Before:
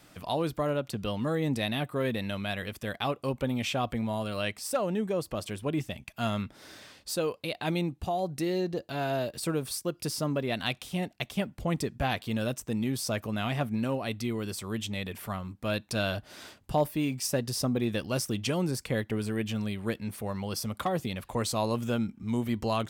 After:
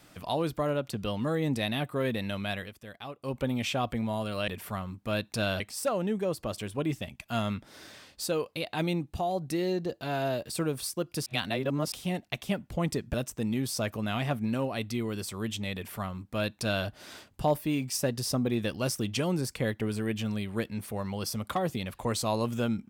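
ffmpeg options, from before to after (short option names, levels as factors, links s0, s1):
-filter_complex "[0:a]asplit=8[s0][s1][s2][s3][s4][s5][s6][s7];[s0]atrim=end=2.73,asetpts=PTS-STARTPTS,afade=t=out:st=2.55:d=0.18:silence=0.281838[s8];[s1]atrim=start=2.73:end=3.19,asetpts=PTS-STARTPTS,volume=0.282[s9];[s2]atrim=start=3.19:end=4.482,asetpts=PTS-STARTPTS,afade=t=in:d=0.18:silence=0.281838[s10];[s3]atrim=start=15.048:end=16.172[s11];[s4]atrim=start=4.478:end=10.142[s12];[s5]atrim=start=10.138:end=10.802,asetpts=PTS-STARTPTS,areverse[s13];[s6]atrim=start=10.798:end=12.022[s14];[s7]atrim=start=12.438[s15];[s8][s9][s10]concat=n=3:v=0:a=1[s16];[s16][s11]acrossfade=d=0.004:c1=hsin:c2=hsin[s17];[s17][s12]acrossfade=d=0.004:c1=hsin:c2=hsin[s18];[s18][s13]acrossfade=d=0.004:c1=hsin:c2=hsin[s19];[s19][s14]acrossfade=d=0.004:c1=hsin:c2=hsin[s20];[s20][s15]acrossfade=d=0.004:c1=hsin:c2=hsin"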